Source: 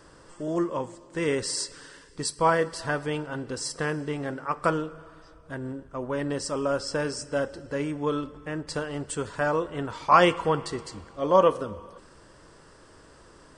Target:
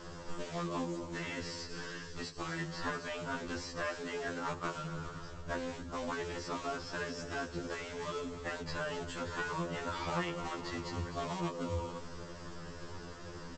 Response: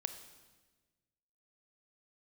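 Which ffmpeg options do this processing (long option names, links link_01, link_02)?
-filter_complex "[0:a]acompressor=threshold=-35dB:ratio=5,aresample=16000,acrusher=bits=3:mode=log:mix=0:aa=0.000001,aresample=44100,equalizer=frequency=160:width_type=o:width=0.41:gain=5.5,afftfilt=real='re*lt(hypot(re,im),0.0794)':imag='im*lt(hypot(re,im),0.0794)':win_size=1024:overlap=0.75,lowshelf=frequency=100:gain=6.5,asplit=5[link_01][link_02][link_03][link_04][link_05];[link_02]adelay=254,afreqshift=-40,volume=-16.5dB[link_06];[link_03]adelay=508,afreqshift=-80,volume=-23.6dB[link_07];[link_04]adelay=762,afreqshift=-120,volume=-30.8dB[link_08];[link_05]adelay=1016,afreqshift=-160,volume=-37.9dB[link_09];[link_01][link_06][link_07][link_08][link_09]amix=inputs=5:normalize=0,acrossover=split=3500[link_10][link_11];[link_11]acompressor=threshold=-54dB:ratio=4:attack=1:release=60[link_12];[link_10][link_12]amix=inputs=2:normalize=0,afftfilt=real='re*2*eq(mod(b,4),0)':imag='im*2*eq(mod(b,4),0)':win_size=2048:overlap=0.75,volume=6.5dB"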